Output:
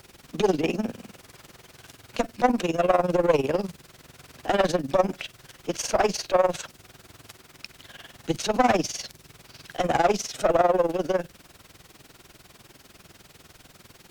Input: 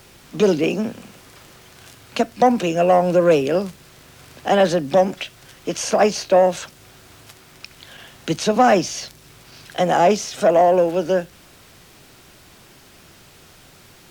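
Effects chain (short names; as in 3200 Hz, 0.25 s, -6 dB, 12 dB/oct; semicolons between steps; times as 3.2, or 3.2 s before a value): one diode to ground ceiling -18.5 dBFS; AM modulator 20 Hz, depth 70%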